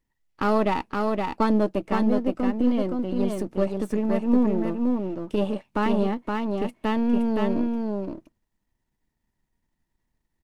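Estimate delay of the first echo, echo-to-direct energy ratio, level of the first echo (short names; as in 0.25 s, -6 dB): 0.519 s, -3.5 dB, -3.5 dB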